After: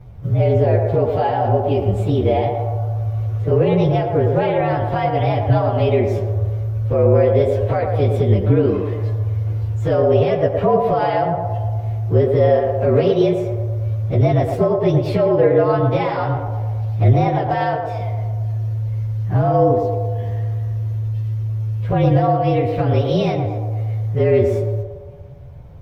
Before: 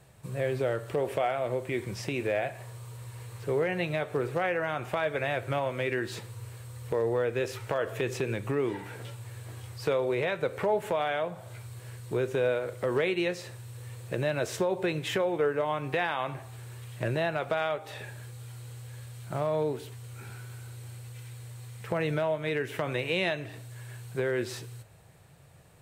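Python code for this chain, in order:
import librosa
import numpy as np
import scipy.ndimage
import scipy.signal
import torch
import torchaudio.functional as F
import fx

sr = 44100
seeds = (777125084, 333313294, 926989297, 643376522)

y = fx.partial_stretch(x, sr, pct=113)
y = fx.tilt_eq(y, sr, slope=-4.0)
y = fx.echo_banded(y, sr, ms=114, feedback_pct=67, hz=630.0, wet_db=-3.5)
y = F.gain(torch.from_numpy(y), 9.0).numpy()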